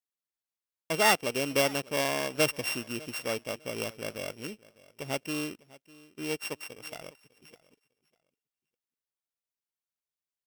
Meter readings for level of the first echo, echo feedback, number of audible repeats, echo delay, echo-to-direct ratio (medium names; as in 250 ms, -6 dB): -21.5 dB, 22%, 2, 601 ms, -21.5 dB